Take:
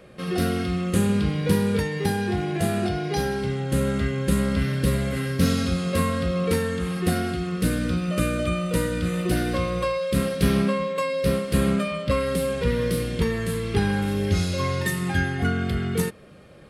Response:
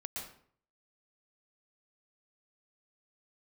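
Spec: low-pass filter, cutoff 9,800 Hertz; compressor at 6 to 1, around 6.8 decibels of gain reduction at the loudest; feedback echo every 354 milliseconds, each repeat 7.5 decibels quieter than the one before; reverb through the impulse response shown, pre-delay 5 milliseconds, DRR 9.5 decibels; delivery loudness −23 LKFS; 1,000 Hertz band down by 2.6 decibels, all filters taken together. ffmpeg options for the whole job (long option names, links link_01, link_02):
-filter_complex "[0:a]lowpass=9800,equalizer=frequency=1000:width_type=o:gain=-3.5,acompressor=threshold=-23dB:ratio=6,aecho=1:1:354|708|1062|1416|1770:0.422|0.177|0.0744|0.0312|0.0131,asplit=2[link_01][link_02];[1:a]atrim=start_sample=2205,adelay=5[link_03];[link_02][link_03]afir=irnorm=-1:irlink=0,volume=-9dB[link_04];[link_01][link_04]amix=inputs=2:normalize=0,volume=3.5dB"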